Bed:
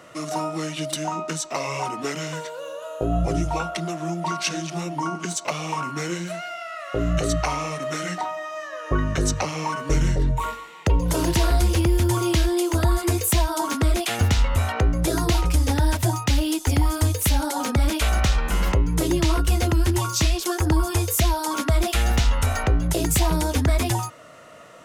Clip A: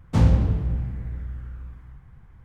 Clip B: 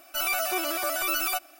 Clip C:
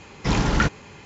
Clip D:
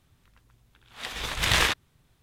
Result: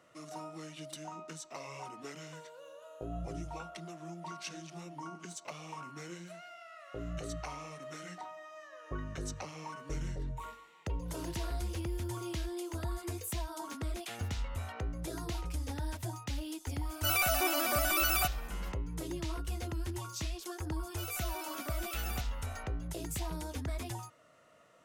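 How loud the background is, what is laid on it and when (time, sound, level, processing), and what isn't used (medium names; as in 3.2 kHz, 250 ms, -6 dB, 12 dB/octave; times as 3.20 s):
bed -17.5 dB
16.89 s: add B -2.5 dB
20.83 s: add B -15.5 dB
not used: A, C, D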